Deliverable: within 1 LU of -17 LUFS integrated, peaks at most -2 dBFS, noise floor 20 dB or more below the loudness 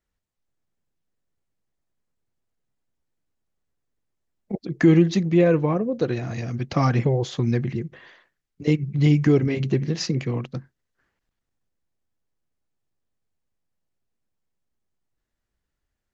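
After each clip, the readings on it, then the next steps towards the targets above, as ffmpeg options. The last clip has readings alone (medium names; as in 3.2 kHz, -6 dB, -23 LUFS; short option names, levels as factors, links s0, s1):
loudness -22.0 LUFS; peak level -5.5 dBFS; loudness target -17.0 LUFS
-> -af "volume=1.78,alimiter=limit=0.794:level=0:latency=1"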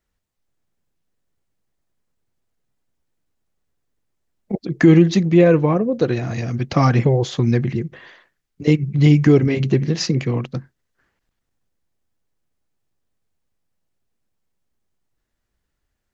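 loudness -17.0 LUFS; peak level -2.0 dBFS; noise floor -76 dBFS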